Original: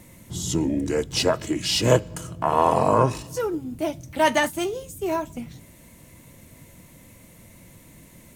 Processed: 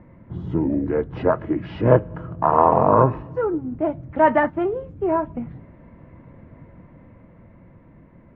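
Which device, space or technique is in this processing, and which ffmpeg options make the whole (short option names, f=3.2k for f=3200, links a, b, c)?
action camera in a waterproof case: -af "lowpass=f=1.6k:w=0.5412,lowpass=f=1.6k:w=1.3066,dynaudnorm=f=220:g=13:m=3dB,volume=2dB" -ar 48000 -c:a aac -b:a 48k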